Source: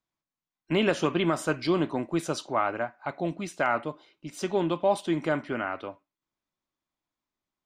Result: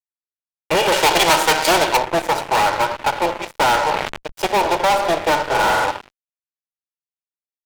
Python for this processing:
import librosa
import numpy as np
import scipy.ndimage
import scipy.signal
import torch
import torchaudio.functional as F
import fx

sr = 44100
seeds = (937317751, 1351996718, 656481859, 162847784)

y = fx.lower_of_two(x, sr, delay_ms=2.1)
y = fx.peak_eq(y, sr, hz=820.0, db=13.5, octaves=0.6)
y = fx.transient(y, sr, attack_db=6, sustain_db=-7)
y = scipy.signal.sosfilt(scipy.signal.butter(2, 440.0, 'highpass', fs=sr, output='sos'), y)
y = fx.room_flutter(y, sr, wall_m=7.7, rt60_s=1.3, at=(5.4, 5.85))
y = fx.cheby_harmonics(y, sr, harmonics=(6,), levels_db=(-28,), full_scale_db=-4.0)
y = fx.room_shoebox(y, sr, seeds[0], volume_m3=960.0, walls='mixed', distance_m=0.64)
y = fx.fuzz(y, sr, gain_db=27.0, gate_db=-36.0)
y = fx.high_shelf(y, sr, hz=2100.0, db=10.0, at=(0.92, 1.97))
y = fx.sustainer(y, sr, db_per_s=49.0, at=(3.74, 4.32))